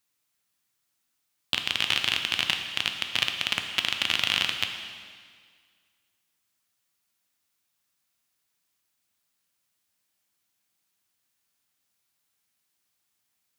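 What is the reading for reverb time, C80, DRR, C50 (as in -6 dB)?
1.9 s, 7.5 dB, 4.0 dB, 6.0 dB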